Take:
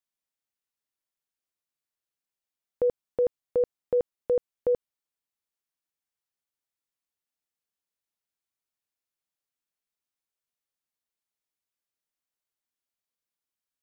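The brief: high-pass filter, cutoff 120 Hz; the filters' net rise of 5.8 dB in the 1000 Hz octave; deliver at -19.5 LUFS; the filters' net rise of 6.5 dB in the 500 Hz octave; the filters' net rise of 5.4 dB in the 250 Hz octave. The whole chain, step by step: HPF 120 Hz; bell 250 Hz +5.5 dB; bell 500 Hz +4.5 dB; bell 1000 Hz +5.5 dB; gain +3 dB

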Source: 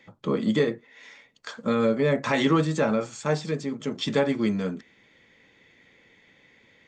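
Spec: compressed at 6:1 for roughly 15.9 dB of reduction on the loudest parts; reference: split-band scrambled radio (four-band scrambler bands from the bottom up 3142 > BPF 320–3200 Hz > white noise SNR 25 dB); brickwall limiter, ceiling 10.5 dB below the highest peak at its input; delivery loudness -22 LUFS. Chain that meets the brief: compressor 6:1, threshold -35 dBFS; limiter -31.5 dBFS; four-band scrambler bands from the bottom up 3142; BPF 320–3200 Hz; white noise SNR 25 dB; gain +18 dB

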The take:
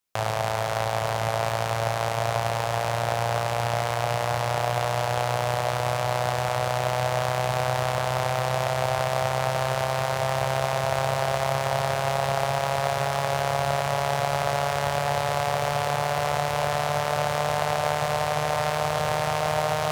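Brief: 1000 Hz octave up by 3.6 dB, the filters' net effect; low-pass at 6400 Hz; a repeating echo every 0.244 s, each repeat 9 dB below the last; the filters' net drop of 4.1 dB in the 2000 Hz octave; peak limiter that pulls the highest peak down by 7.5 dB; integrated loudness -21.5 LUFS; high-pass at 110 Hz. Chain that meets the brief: HPF 110 Hz; LPF 6400 Hz; bell 1000 Hz +6.5 dB; bell 2000 Hz -8 dB; limiter -15.5 dBFS; feedback echo 0.244 s, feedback 35%, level -9 dB; gain +5 dB

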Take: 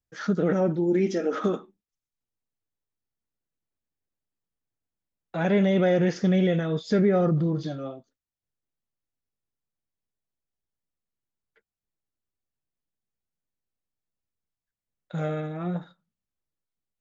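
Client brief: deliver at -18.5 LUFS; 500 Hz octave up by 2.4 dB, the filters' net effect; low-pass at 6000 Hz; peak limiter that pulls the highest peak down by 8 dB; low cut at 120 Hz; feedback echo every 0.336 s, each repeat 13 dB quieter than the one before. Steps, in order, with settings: HPF 120 Hz; LPF 6000 Hz; bell 500 Hz +3 dB; limiter -18.5 dBFS; feedback echo 0.336 s, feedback 22%, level -13 dB; gain +9 dB

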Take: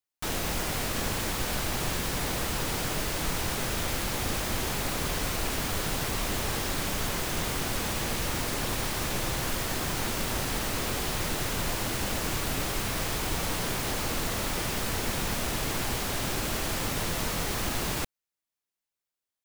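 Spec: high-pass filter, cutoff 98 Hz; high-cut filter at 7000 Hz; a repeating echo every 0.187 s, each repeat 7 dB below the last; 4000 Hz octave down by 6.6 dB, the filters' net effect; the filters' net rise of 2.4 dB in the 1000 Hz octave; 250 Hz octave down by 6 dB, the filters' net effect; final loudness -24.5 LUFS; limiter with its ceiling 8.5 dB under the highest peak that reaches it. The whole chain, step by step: HPF 98 Hz; LPF 7000 Hz; bell 250 Hz -8.5 dB; bell 1000 Hz +4 dB; bell 4000 Hz -8.5 dB; limiter -29 dBFS; feedback echo 0.187 s, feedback 45%, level -7 dB; gain +12 dB

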